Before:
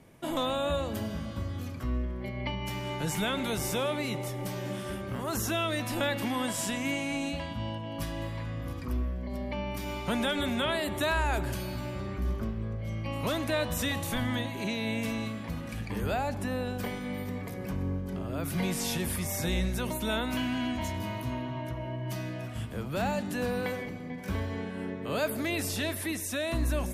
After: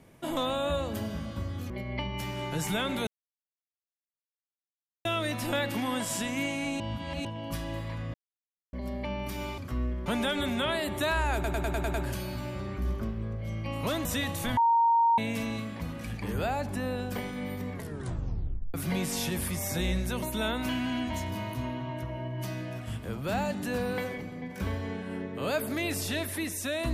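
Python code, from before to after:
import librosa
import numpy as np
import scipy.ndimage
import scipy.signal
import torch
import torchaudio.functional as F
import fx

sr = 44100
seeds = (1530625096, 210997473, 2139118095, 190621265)

y = fx.edit(x, sr, fx.move(start_s=1.7, length_s=0.48, to_s=10.06),
    fx.silence(start_s=3.55, length_s=1.98),
    fx.reverse_span(start_s=7.28, length_s=0.45),
    fx.silence(start_s=8.62, length_s=0.59),
    fx.stutter(start_s=11.34, slice_s=0.1, count=7),
    fx.cut(start_s=13.45, length_s=0.28),
    fx.bleep(start_s=14.25, length_s=0.61, hz=927.0, db=-19.5),
    fx.tape_stop(start_s=17.41, length_s=1.01), tone=tone)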